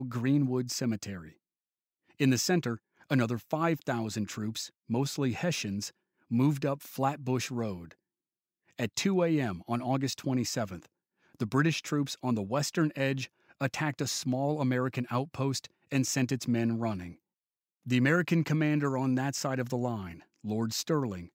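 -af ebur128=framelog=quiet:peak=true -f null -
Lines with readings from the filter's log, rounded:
Integrated loudness:
  I:         -30.8 LUFS
  Threshold: -41.3 LUFS
Loudness range:
  LRA:         2.6 LU
  Threshold: -51.5 LUFS
  LRA low:   -32.6 LUFS
  LRA high:  -30.0 LUFS
True peak:
  Peak:      -12.8 dBFS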